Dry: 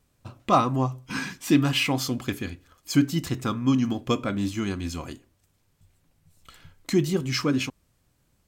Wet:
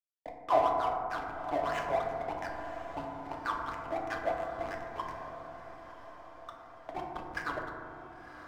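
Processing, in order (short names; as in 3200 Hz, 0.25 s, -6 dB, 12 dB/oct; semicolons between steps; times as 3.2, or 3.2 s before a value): per-bin compression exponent 0.6; elliptic band-pass 310–3800 Hz; notch 1300 Hz, Q 11; one-sided clip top -28 dBFS; wah 3 Hz 620–1900 Hz, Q 12; backlash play -37 dBFS; diffused feedback echo 1.022 s, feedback 55%, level -12 dB; FDN reverb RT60 2.2 s, low-frequency decay 1.6×, high-frequency decay 0.25×, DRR -0.5 dB; gain +7.5 dB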